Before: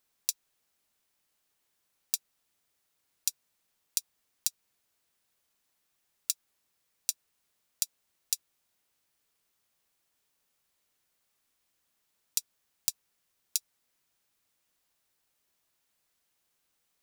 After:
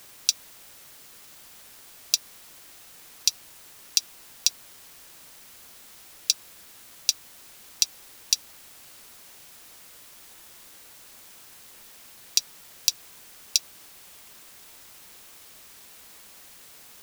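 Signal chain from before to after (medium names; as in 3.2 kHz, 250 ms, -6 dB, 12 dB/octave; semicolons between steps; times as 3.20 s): high-order bell 3.7 kHz +14.5 dB; word length cut 8-bit, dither triangular; trim -1 dB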